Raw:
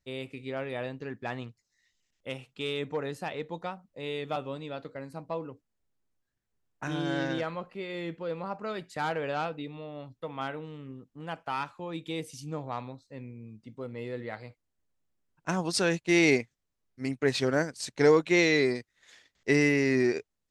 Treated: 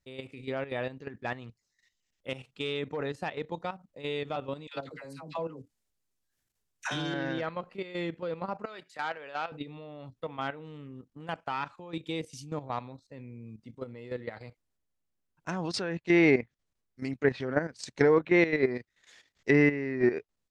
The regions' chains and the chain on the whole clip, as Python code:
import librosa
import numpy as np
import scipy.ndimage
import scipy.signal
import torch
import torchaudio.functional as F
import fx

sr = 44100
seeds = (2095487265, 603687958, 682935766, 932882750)

y = fx.chain(x, sr, fx.high_shelf(hz=2800.0, db=10.5),
    fx.dispersion(late='lows', ms=94.0, hz=820.0), at=(4.67, 7.14))
y = fx.chain(y, sr, fx.highpass(hz=940.0, slope=6),
    fx.high_shelf(hz=5600.0, db=-7.5), at=(8.65, 9.52))
y = fx.dynamic_eq(y, sr, hz=1800.0, q=4.4, threshold_db=-44.0, ratio=4.0, max_db=3)
y = fx.env_lowpass_down(y, sr, base_hz=2000.0, full_db=-22.5)
y = fx.level_steps(y, sr, step_db=12)
y = y * 10.0 ** (3.5 / 20.0)